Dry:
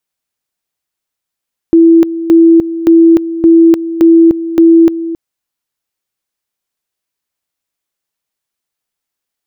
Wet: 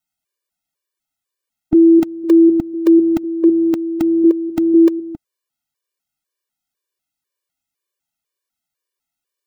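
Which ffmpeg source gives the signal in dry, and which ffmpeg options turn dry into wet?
-f lavfi -i "aevalsrc='pow(10,(-1.5-13.5*gte(mod(t,0.57),0.3))/20)*sin(2*PI*331*t)':d=3.42:s=44100"
-af "afftfilt=real='re*gt(sin(2*PI*2*pts/sr)*(1-2*mod(floor(b*sr/1024/310),2)),0)':imag='im*gt(sin(2*PI*2*pts/sr)*(1-2*mod(floor(b*sr/1024/310),2)),0)':win_size=1024:overlap=0.75"

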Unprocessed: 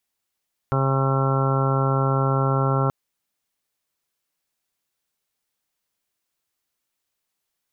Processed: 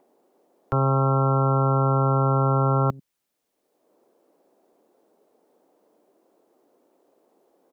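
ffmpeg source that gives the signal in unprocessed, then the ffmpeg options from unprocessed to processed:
-f lavfi -i "aevalsrc='0.1*sin(2*PI*135*t)+0.0316*sin(2*PI*270*t)+0.0398*sin(2*PI*405*t)+0.0376*sin(2*PI*540*t)+0.0224*sin(2*PI*675*t)+0.0282*sin(2*PI*810*t)+0.02*sin(2*PI*945*t)+0.0316*sin(2*PI*1080*t)+0.0133*sin(2*PI*1215*t)+0.0422*sin(2*PI*1350*t)':d=2.18:s=44100"
-filter_complex "[0:a]acrossover=split=160|260|620[a][b][c][d];[b]aecho=1:1:90:0.316[e];[c]acompressor=mode=upward:threshold=-36dB:ratio=2.5[f];[a][e][f][d]amix=inputs=4:normalize=0"

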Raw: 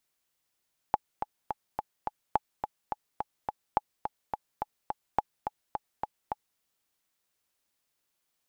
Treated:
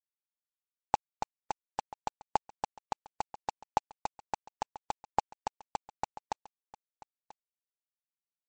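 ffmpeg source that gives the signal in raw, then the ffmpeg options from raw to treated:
-f lavfi -i "aevalsrc='pow(10,(-10-7.5*gte(mod(t,5*60/212),60/212))/20)*sin(2*PI*845*mod(t,60/212))*exp(-6.91*mod(t,60/212)/0.03)':d=5.66:s=44100"
-af "aresample=16000,acrusher=bits=5:mix=0:aa=0.000001,aresample=44100,aecho=1:1:987:0.119" -ar 22050 -c:a libmp3lame -b:a 128k

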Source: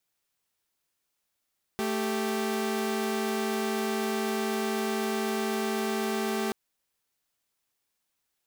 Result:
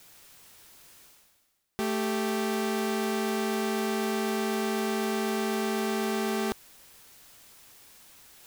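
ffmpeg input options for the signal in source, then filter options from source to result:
-f lavfi -i "aevalsrc='0.0422*((2*mod(220*t,1)-1)+(2*mod(392*t,1)-1))':d=4.73:s=44100"
-af "lowshelf=f=160:g=3,areverse,acompressor=mode=upward:threshold=-32dB:ratio=2.5,areverse"

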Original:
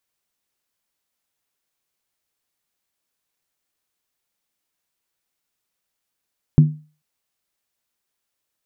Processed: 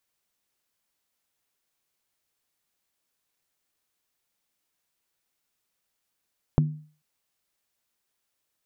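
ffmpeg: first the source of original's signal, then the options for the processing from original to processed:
-f lavfi -i "aevalsrc='0.631*pow(10,-3*t/0.35)*sin(2*PI*152*t)+0.178*pow(10,-3*t/0.277)*sin(2*PI*242.3*t)+0.0501*pow(10,-3*t/0.239)*sin(2*PI*324.7*t)+0.0141*pow(10,-3*t/0.231)*sin(2*PI*349*t)+0.00398*pow(10,-3*t/0.215)*sin(2*PI*403.3*t)':d=0.44:s=44100"
-af "acompressor=threshold=-20dB:ratio=6"

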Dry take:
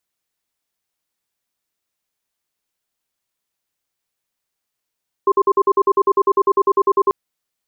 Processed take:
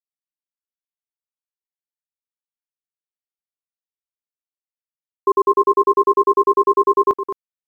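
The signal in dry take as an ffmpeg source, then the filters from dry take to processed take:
-f lavfi -i "aevalsrc='0.224*(sin(2*PI*394*t)+sin(2*PI*1060*t))*clip(min(mod(t,0.1),0.05-mod(t,0.1))/0.005,0,1)':d=1.84:s=44100"
-filter_complex "[0:a]acrusher=bits=7:mix=0:aa=0.000001,asplit=2[a][b];[b]aecho=0:1:215:0.335[c];[a][c]amix=inputs=2:normalize=0"

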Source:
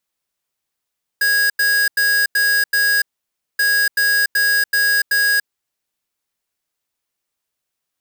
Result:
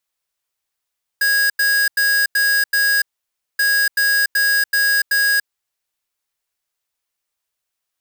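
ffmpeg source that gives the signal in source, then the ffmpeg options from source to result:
-f lavfi -i "aevalsrc='0.168*(2*lt(mod(1650*t,1),0.5)-1)*clip(min(mod(mod(t,2.38),0.38),0.29-mod(mod(t,2.38),0.38))/0.005,0,1)*lt(mod(t,2.38),1.9)':d=4.76:s=44100"
-af "equalizer=f=210:w=0.7:g=-8.5"

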